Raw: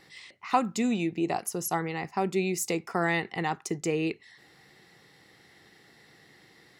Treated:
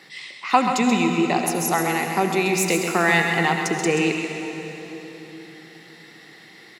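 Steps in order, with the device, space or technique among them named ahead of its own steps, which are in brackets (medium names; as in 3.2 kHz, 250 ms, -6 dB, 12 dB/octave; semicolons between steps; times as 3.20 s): PA in a hall (high-pass 140 Hz 24 dB/octave; peaking EQ 2.7 kHz +5 dB 1.9 oct; delay 132 ms -7.5 dB; reverberation RT60 3.8 s, pre-delay 67 ms, DRR 5 dB); trim +6 dB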